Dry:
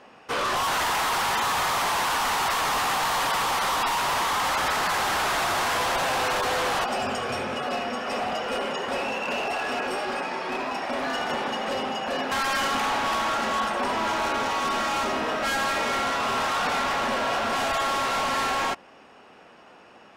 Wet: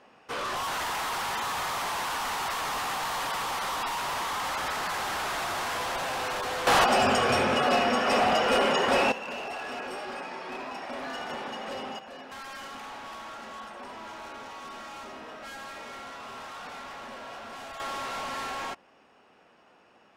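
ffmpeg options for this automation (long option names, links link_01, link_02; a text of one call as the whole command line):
ffmpeg -i in.wav -af "asetnsamples=nb_out_samples=441:pad=0,asendcmd='6.67 volume volume 5dB;9.12 volume volume -8dB;11.99 volume volume -16dB;17.8 volume volume -9dB',volume=-6.5dB" out.wav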